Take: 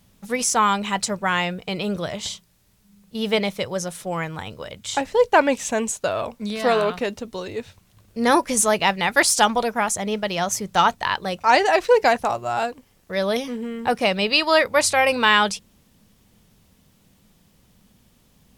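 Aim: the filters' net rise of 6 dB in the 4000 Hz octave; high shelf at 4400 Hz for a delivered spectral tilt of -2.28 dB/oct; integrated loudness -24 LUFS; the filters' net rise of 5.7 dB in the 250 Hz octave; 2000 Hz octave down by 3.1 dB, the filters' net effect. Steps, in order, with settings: bell 250 Hz +7 dB; bell 2000 Hz -7.5 dB; bell 4000 Hz +6 dB; high shelf 4400 Hz +8.5 dB; gain -6 dB

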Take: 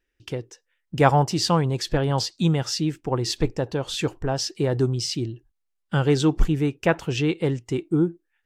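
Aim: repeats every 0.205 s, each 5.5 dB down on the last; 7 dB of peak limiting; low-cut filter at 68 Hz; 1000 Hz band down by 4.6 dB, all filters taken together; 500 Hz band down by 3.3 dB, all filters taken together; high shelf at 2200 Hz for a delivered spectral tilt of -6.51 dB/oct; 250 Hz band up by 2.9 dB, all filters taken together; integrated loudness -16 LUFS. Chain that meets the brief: HPF 68 Hz; bell 250 Hz +7 dB; bell 500 Hz -6 dB; bell 1000 Hz -3.5 dB; high shelf 2200 Hz -3.5 dB; limiter -13 dBFS; feedback echo 0.205 s, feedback 53%, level -5.5 dB; gain +7.5 dB

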